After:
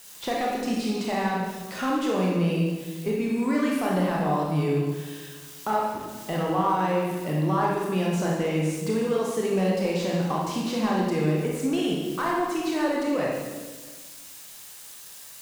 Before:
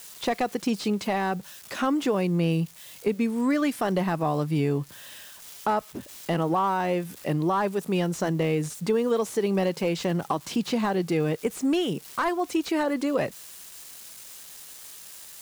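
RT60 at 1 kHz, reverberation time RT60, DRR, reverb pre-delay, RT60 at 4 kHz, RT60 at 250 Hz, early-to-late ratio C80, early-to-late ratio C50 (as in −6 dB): 1.3 s, 1.4 s, −3.5 dB, 22 ms, 1.2 s, 1.6 s, 2.5 dB, −0.5 dB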